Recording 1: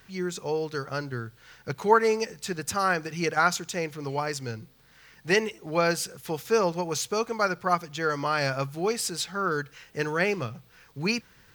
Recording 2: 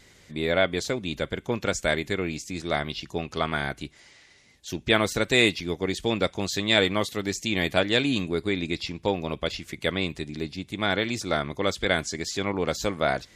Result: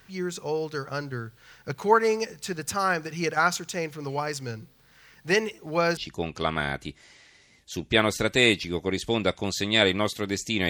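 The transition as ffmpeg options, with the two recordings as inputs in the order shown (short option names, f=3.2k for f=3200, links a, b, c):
-filter_complex "[0:a]apad=whole_dur=10.69,atrim=end=10.69,atrim=end=5.972[a];[1:a]atrim=start=2.928:end=7.65[b];[a][b]acrossfade=d=0.004:c1=hsin:c2=hsin"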